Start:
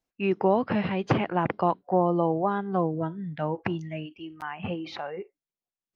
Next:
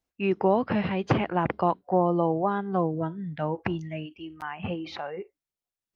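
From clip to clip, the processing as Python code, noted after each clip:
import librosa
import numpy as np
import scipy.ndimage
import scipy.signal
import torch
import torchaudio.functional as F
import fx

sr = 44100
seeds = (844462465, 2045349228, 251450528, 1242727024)

y = fx.peak_eq(x, sr, hz=71.0, db=14.5, octaves=0.28)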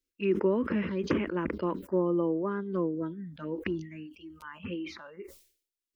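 y = fx.fixed_phaser(x, sr, hz=310.0, stages=4)
y = fx.env_phaser(y, sr, low_hz=150.0, high_hz=4400.0, full_db=-26.5)
y = fx.sustainer(y, sr, db_per_s=110.0)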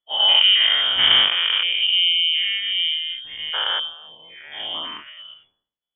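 y = fx.spec_dilate(x, sr, span_ms=240)
y = fx.freq_invert(y, sr, carrier_hz=3400)
y = fx.upward_expand(y, sr, threshold_db=-43.0, expansion=1.5)
y = y * 10.0 ** (7.5 / 20.0)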